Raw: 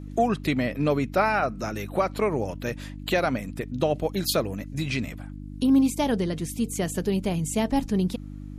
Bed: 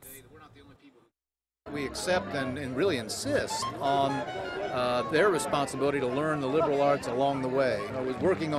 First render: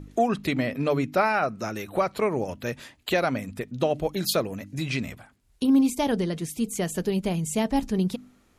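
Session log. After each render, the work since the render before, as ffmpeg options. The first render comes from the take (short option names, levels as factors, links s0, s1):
-af "bandreject=f=50:t=h:w=4,bandreject=f=100:t=h:w=4,bandreject=f=150:t=h:w=4,bandreject=f=200:t=h:w=4,bandreject=f=250:t=h:w=4,bandreject=f=300:t=h:w=4"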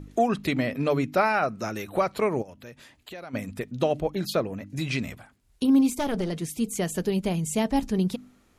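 -filter_complex "[0:a]asplit=3[s0][s1][s2];[s0]afade=t=out:st=2.41:d=0.02[s3];[s1]acompressor=threshold=0.00282:ratio=2:attack=3.2:release=140:knee=1:detection=peak,afade=t=in:st=2.41:d=0.02,afade=t=out:st=3.33:d=0.02[s4];[s2]afade=t=in:st=3.33:d=0.02[s5];[s3][s4][s5]amix=inputs=3:normalize=0,asettb=1/sr,asplit=3[s6][s7][s8];[s6]atrim=end=4.004[s9];[s7]atrim=start=4:end=4.7,asetpts=PTS-STARTPTS,afade=t=in:d=0.004:c=qsin,afade=t=out:st=0.696:d=0.004:c=qsin,highshelf=f=3900:g=-11.5[s10];[s8]atrim=start=4.696[s11];[s9][s10]acrossfade=d=0.004:c1=hsin:c2=qsin[s12];[s12][s11]acrossfade=d=0.004:c1=qsin:c2=hsin,asplit=3[s13][s14][s15];[s13]afade=t=out:st=5.9:d=0.02[s16];[s14]aeval=exprs='clip(val(0),-1,0.0398)':c=same,afade=t=in:st=5.9:d=0.02,afade=t=out:st=6.31:d=0.02[s17];[s15]afade=t=in:st=6.31:d=0.02[s18];[s16][s17][s18]amix=inputs=3:normalize=0"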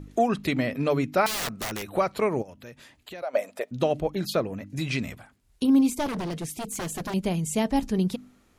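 -filter_complex "[0:a]asettb=1/sr,asplit=3[s0][s1][s2];[s0]atrim=end=1.264[s3];[s1]atrim=start=1.26:end=1.9,asetpts=PTS-STARTPTS,afade=t=in:d=0.004:c=qsin,afade=t=out:st=0.636:d=0.004:c=qsin,aeval=exprs='(mod(17.8*val(0)+1,2)-1)/17.8':c=same[s4];[s2]atrim=start=1.896[s5];[s3][s4]acrossfade=d=0.004:c1=hsin:c2=qsin[s6];[s6][s5]acrossfade=d=0.004:c1=qsin:c2=hsin,asettb=1/sr,asplit=3[s7][s8][s9];[s7]atrim=end=3.224[s10];[s8]atrim=start=3.22:end=3.71,asetpts=PTS-STARTPTS,afade=t=in:d=0.004:c=qsin,afade=t=out:st=0.486:d=0.004:c=qsin,highpass=f=600:t=q:w=5.9[s11];[s9]atrim=start=3.706[s12];[s10][s11]acrossfade=d=0.004:c1=hsin:c2=qsin[s13];[s13][s12]acrossfade=d=0.004:c1=qsin:c2=hsin,asettb=1/sr,asplit=3[s14][s15][s16];[s14]atrim=end=6.064[s17];[s15]atrim=start=6.06:end=7.14,asetpts=PTS-STARTPTS,afade=t=in:d=0.004:c=qsin,afade=t=out:st=1.076:d=0.004:c=qsin,aeval=exprs='0.0473*(abs(mod(val(0)/0.0473+3,4)-2)-1)':c=same[s18];[s16]atrim=start=7.136[s19];[s17][s18]acrossfade=d=0.004:c1=hsin:c2=qsin[s20];[s20][s19]acrossfade=d=0.004:c1=qsin:c2=hsin"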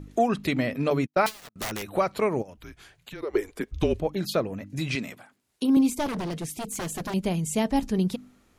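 -filter_complex "[0:a]asettb=1/sr,asplit=3[s0][s1][s2];[s0]atrim=end=0.904[s3];[s1]atrim=start=0.9:end=1.56,asetpts=PTS-STARTPTS,afade=t=in:d=0.004:c=qsin,afade=t=out:st=0.656:d=0.004:c=qsin,agate=range=0.00708:threshold=0.0398:ratio=16:release=100:detection=peak[s4];[s2]atrim=start=1.556[s5];[s3][s4]acrossfade=d=0.004:c1=hsin:c2=qsin[s6];[s6][s5]acrossfade=d=0.004:c1=qsin:c2=hsin,asettb=1/sr,asplit=3[s7][s8][s9];[s7]atrim=end=2.574[s10];[s8]atrim=start=2.57:end=4,asetpts=PTS-STARTPTS,afade=t=in:d=0.004:c=qsin,afade=t=out:st=1.426:d=0.004:c=qsin,afreqshift=-200[s11];[s9]atrim=start=3.996[s12];[s10][s11]acrossfade=d=0.004:c1=hsin:c2=qsin[s13];[s13][s12]acrossfade=d=0.004:c1=qsin:c2=hsin,asettb=1/sr,asplit=3[s14][s15][s16];[s14]atrim=end=4.954[s17];[s15]atrim=start=4.95:end=5.77,asetpts=PTS-STARTPTS,afade=t=in:d=0.004:c=qsin,afade=t=out:st=0.816:d=0.004:c=qsin,highpass=210[s18];[s16]atrim=start=5.766[s19];[s17][s18]acrossfade=d=0.004:c1=hsin:c2=qsin[s20];[s20][s19]acrossfade=d=0.004:c1=qsin:c2=hsin"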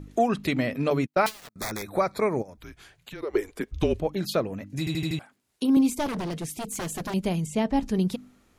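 -filter_complex "[0:a]asettb=1/sr,asplit=3[s0][s1][s2];[s0]atrim=end=1.504[s3];[s1]atrim=start=1.5:end=2.59,asetpts=PTS-STARTPTS,afade=t=in:d=0.004:c=qsin,afade=t=out:st=1.086:d=0.004:c=qsin,asuperstop=centerf=2900:order=8:qfactor=3.4[s4];[s2]atrim=start=2.586[s5];[s3][s4]acrossfade=d=0.004:c1=hsin:c2=qsin[s6];[s6][s5]acrossfade=d=0.004:c1=qsin:c2=hsin,asettb=1/sr,asplit=3[s7][s8][s9];[s7]atrim=end=7.464[s10];[s8]atrim=start=7.46:end=7.86,asetpts=PTS-STARTPTS,afade=t=in:d=0.004:c=qsin,afade=t=out:st=0.396:d=0.004:c=qsin,aemphasis=mode=reproduction:type=50kf[s11];[s9]atrim=start=7.856[s12];[s10][s11]acrossfade=d=0.004:c1=hsin:c2=qsin[s13];[s13][s12]acrossfade=d=0.004:c1=qsin:c2=hsin,asplit=6[s14][s15][s16][s17][s18][s19];[s14]atrim=end=4.872[s20];[s15]atrim=start=4.788:end=4.872[s21];[s16]atrim=start=4.788:end=4.872[s22];[s17]atrim=start=4.788:end=4.872[s23];[s18]atrim=start=4.788:end=4.872[s24];[s19]atrim=start=5.188[s25];[s20][s21]acrossfade=d=0.004:c1=hsin:c2=hsin[s26];[s26][s22]acrossfade=d=0.004:c1=hsin:c2=hsin[s27];[s27][s23]acrossfade=d=0.004:c1=hsin:c2=hsin[s28];[s28][s24]acrossfade=d=0.004:c1=hsin:c2=hsin[s29];[s29][s25]acrossfade=d=0.004:c1=hsin:c2=hsin"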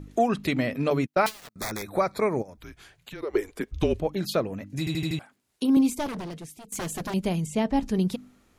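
-filter_complex "[0:a]asplit=2[s0][s1];[s0]atrim=end=6.72,asetpts=PTS-STARTPTS,afade=t=out:st=5.82:d=0.9:silence=0.149624[s2];[s1]atrim=start=6.72,asetpts=PTS-STARTPTS,afade=t=in:d=0.004:c=hsin:silence=0.149624[s3];[s2][s3]concat=n=2:v=0:a=1"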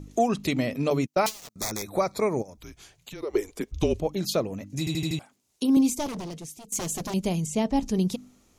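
-af "equalizer=f=1600:t=o:w=0.67:g=-7,equalizer=f=6300:t=o:w=0.67:g=8,equalizer=f=16000:t=o:w=0.67:g=4"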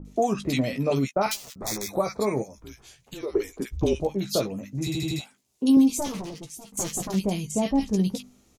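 -filter_complex "[0:a]asplit=2[s0][s1];[s1]adelay=15,volume=0.447[s2];[s0][s2]amix=inputs=2:normalize=0,acrossover=split=1400[s3][s4];[s4]adelay=50[s5];[s3][s5]amix=inputs=2:normalize=0"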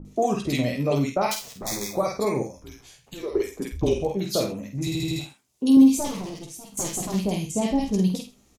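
-filter_complex "[0:a]asplit=2[s0][s1];[s1]adelay=49,volume=0.501[s2];[s0][s2]amix=inputs=2:normalize=0,aecho=1:1:82:0.158"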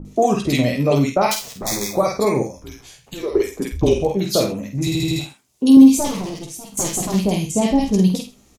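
-af "volume=2.11,alimiter=limit=0.891:level=0:latency=1"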